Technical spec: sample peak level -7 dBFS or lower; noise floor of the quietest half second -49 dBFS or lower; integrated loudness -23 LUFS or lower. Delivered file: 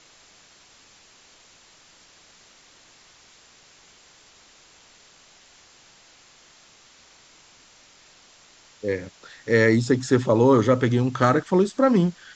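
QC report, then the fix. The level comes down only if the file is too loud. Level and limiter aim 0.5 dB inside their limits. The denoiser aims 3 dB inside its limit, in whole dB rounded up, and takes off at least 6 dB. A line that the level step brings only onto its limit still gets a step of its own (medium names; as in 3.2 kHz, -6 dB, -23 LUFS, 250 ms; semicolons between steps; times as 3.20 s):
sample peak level -3.5 dBFS: fail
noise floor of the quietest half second -54 dBFS: pass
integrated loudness -20.5 LUFS: fail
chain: trim -3 dB; peak limiter -7.5 dBFS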